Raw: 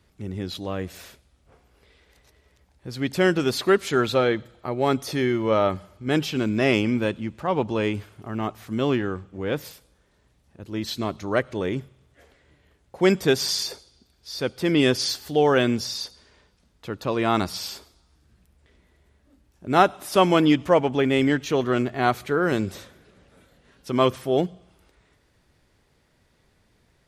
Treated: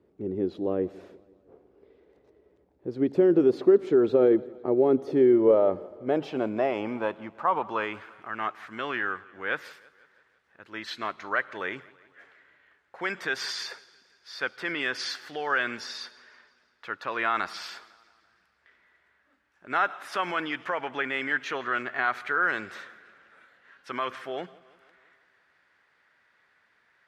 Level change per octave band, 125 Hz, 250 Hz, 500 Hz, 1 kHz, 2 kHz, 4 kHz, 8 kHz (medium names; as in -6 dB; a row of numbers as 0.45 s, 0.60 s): -14.5 dB, -5.5 dB, -2.5 dB, -4.5 dB, +0.5 dB, -9.0 dB, -12.5 dB